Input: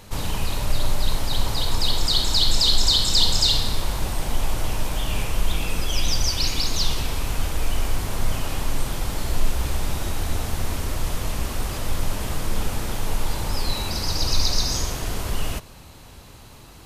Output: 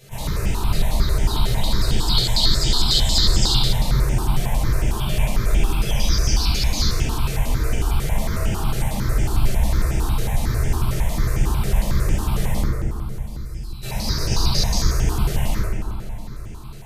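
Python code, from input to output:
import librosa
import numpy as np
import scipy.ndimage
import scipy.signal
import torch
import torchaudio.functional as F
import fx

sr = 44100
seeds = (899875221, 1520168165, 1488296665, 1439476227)

y = fx.tone_stack(x, sr, knobs='6-0-2', at=(12.6, 13.83))
y = fx.rev_fdn(y, sr, rt60_s=2.7, lf_ratio=1.45, hf_ratio=0.35, size_ms=45.0, drr_db=-10.0)
y = fx.phaser_held(y, sr, hz=11.0, low_hz=260.0, high_hz=4100.0)
y = y * librosa.db_to_amplitude(-5.0)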